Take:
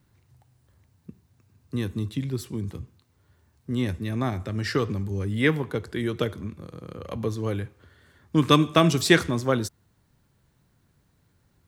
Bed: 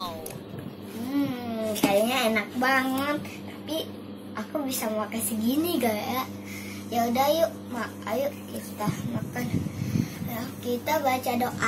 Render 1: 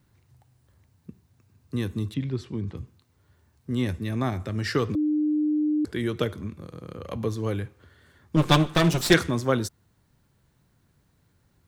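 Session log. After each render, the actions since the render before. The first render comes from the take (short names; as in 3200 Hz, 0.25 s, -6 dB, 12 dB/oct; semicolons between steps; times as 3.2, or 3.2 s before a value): 2.14–2.77 LPF 3900 Hz; 4.95–5.85 bleep 302 Hz -20.5 dBFS; 8.36–9.14 minimum comb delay 5.7 ms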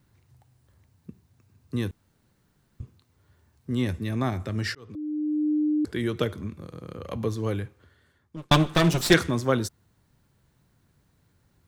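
1.91–2.8 room tone; 4.75–5.51 fade in; 7.53–8.51 fade out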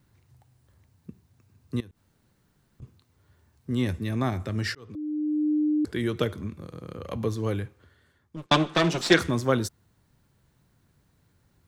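1.8–2.82 compressor 5:1, threshold -46 dBFS; 8.46–9.19 three-band isolator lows -14 dB, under 180 Hz, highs -18 dB, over 7700 Hz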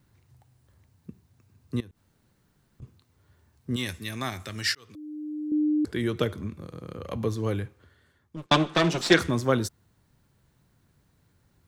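3.76–5.52 tilt shelf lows -9 dB, about 1300 Hz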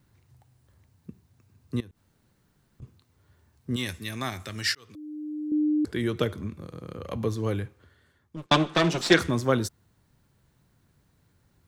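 nothing audible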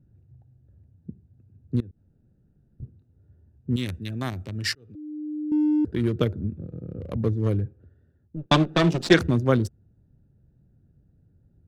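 Wiener smoothing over 41 samples; low shelf 290 Hz +7.5 dB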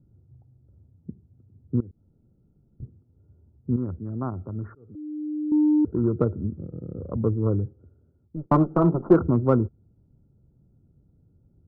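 rippled Chebyshev low-pass 1400 Hz, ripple 3 dB; in parallel at -10.5 dB: overloaded stage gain 15 dB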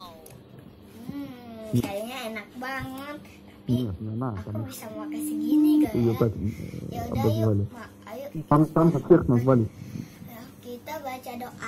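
add bed -10 dB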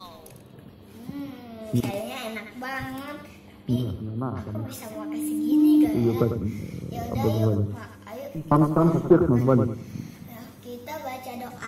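feedback echo 99 ms, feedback 25%, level -8.5 dB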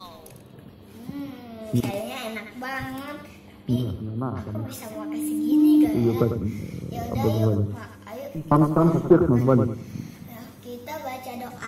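gain +1 dB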